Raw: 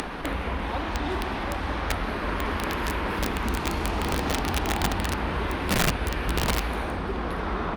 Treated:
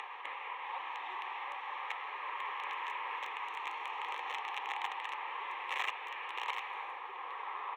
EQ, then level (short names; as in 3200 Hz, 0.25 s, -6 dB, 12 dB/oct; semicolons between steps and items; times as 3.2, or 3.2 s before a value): HPF 740 Hz 24 dB/oct; air absorption 180 m; fixed phaser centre 980 Hz, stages 8; -4.0 dB